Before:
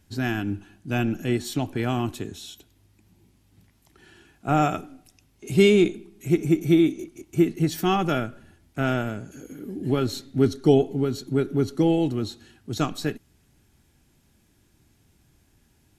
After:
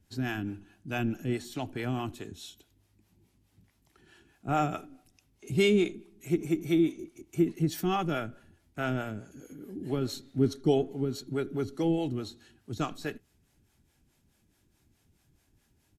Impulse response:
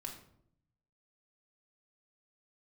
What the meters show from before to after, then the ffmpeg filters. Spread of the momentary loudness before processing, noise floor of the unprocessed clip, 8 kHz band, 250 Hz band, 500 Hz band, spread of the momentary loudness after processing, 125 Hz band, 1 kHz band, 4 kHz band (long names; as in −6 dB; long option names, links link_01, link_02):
17 LU, −63 dBFS, −6.5 dB, −7.0 dB, −7.0 dB, 17 LU, −7.0 dB, −6.0 dB, −6.0 dB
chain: -filter_complex "[0:a]acrossover=split=420[link_01][link_02];[link_01]aeval=exprs='val(0)*(1-0.7/2+0.7/2*cos(2*PI*4.7*n/s))':channel_layout=same[link_03];[link_02]aeval=exprs='val(0)*(1-0.7/2-0.7/2*cos(2*PI*4.7*n/s))':channel_layout=same[link_04];[link_03][link_04]amix=inputs=2:normalize=0,asplit=2[link_05][link_06];[link_06]adelay=80,highpass=300,lowpass=3400,asoftclip=type=hard:threshold=-19dB,volume=-26dB[link_07];[link_05][link_07]amix=inputs=2:normalize=0,volume=-3.5dB"